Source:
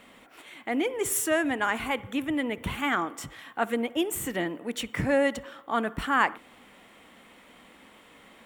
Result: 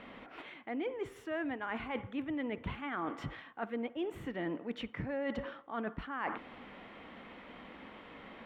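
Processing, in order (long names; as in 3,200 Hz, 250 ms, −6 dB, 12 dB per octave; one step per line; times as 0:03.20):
reversed playback
downward compressor 6 to 1, threshold −39 dBFS, peak gain reduction 20 dB
reversed playback
high-frequency loss of the air 320 metres
level +4.5 dB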